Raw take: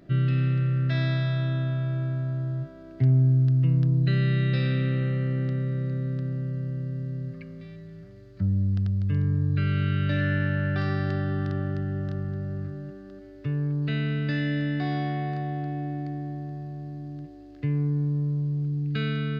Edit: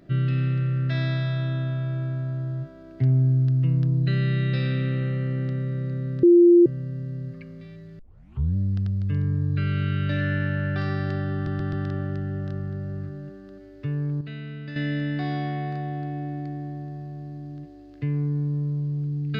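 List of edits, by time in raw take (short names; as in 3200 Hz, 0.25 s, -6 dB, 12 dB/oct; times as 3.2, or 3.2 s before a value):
6.23–6.66 bleep 347 Hz -10 dBFS
7.99 tape start 0.57 s
11.34 stutter 0.13 s, 4 plays
13.82–14.37 gain -9 dB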